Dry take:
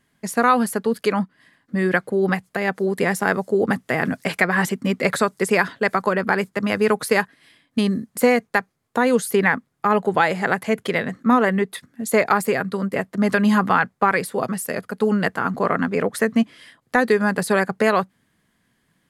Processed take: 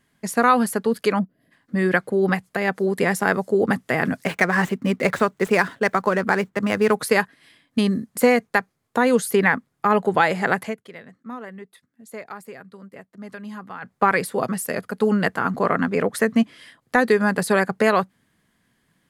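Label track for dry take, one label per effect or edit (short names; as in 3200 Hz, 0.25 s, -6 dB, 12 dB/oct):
1.190000	1.520000	spectral gain 750–11000 Hz -17 dB
4.250000	6.960000	median filter over 9 samples
10.620000	13.950000	dip -18.5 dB, fades 0.14 s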